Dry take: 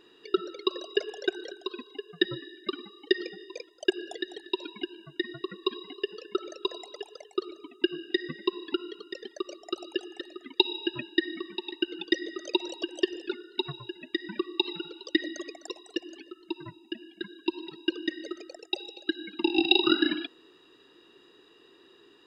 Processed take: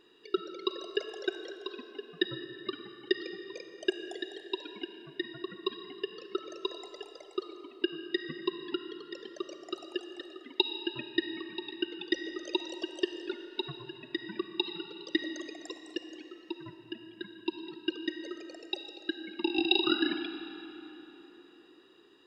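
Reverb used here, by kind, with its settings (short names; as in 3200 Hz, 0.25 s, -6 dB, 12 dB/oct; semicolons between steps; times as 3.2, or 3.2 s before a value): digital reverb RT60 4 s, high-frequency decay 0.7×, pre-delay 10 ms, DRR 8.5 dB; gain -4.5 dB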